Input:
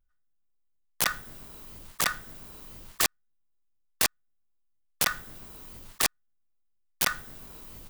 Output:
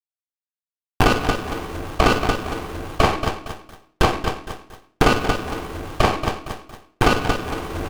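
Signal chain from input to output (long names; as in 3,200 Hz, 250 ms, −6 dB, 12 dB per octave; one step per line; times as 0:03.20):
high-pass filter 170 Hz 6 dB per octave
comb filter 2.6 ms, depth 49%
repeating echo 230 ms, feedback 24%, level −12 dB
treble cut that deepens with the level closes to 1,900 Hz, closed at −26 dBFS
in parallel at +1.5 dB: downward compressor, threshold −42 dBFS, peak gain reduction 17.5 dB
on the sum: high shelf with overshoot 2,700 Hz −9 dB, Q 3
automatic gain control gain up to 15 dB
bit-depth reduction 8 bits, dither none
on a send at −1.5 dB: convolution reverb RT60 0.55 s, pre-delay 6 ms
on the sum: boost into a limiter +5.5 dB
windowed peak hold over 17 samples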